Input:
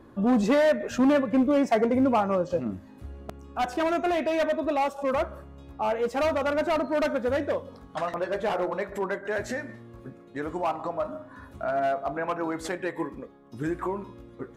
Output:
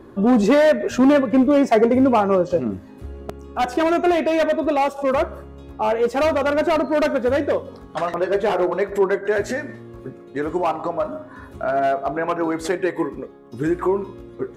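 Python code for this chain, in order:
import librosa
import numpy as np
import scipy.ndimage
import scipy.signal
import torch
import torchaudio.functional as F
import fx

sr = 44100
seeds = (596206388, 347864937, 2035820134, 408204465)

y = fx.peak_eq(x, sr, hz=390.0, db=8.0, octaves=0.32)
y = F.gain(torch.from_numpy(y), 6.0).numpy()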